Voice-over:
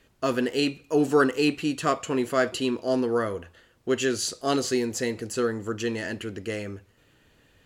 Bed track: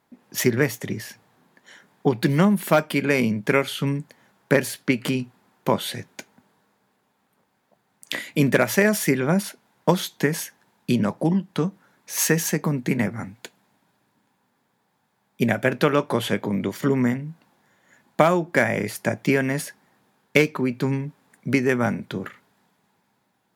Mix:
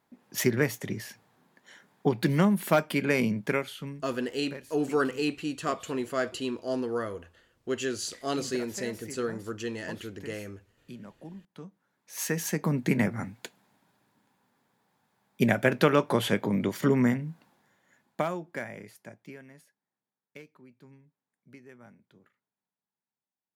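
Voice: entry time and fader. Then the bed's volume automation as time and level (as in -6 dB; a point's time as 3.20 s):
3.80 s, -6.0 dB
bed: 3.37 s -5 dB
4.33 s -23.5 dB
11.48 s -23.5 dB
12.77 s -2.5 dB
17.42 s -2.5 dB
19.72 s -30.5 dB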